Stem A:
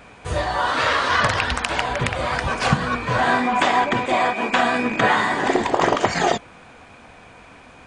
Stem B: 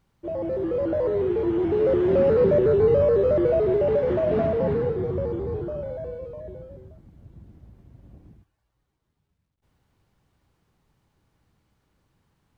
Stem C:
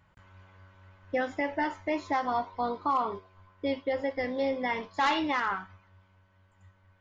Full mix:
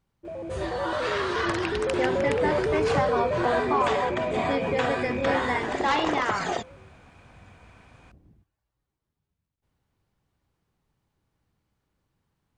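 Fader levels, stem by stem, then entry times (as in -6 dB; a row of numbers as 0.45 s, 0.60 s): -10.0 dB, -7.0 dB, +1.5 dB; 0.25 s, 0.00 s, 0.85 s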